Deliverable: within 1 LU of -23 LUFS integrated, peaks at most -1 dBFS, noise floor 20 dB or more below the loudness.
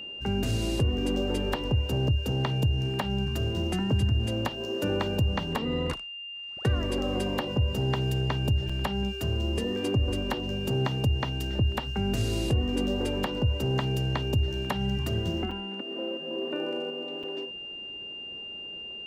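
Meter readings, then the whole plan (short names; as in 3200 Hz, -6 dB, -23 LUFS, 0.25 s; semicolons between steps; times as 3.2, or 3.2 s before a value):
dropouts 3; longest dropout 4.8 ms; steady tone 2800 Hz; tone level -37 dBFS; loudness -29.0 LUFS; peak -16.0 dBFS; loudness target -23.0 LUFS
-> interpolate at 8.69/15.51/17.23, 4.8 ms; notch 2800 Hz, Q 30; gain +6 dB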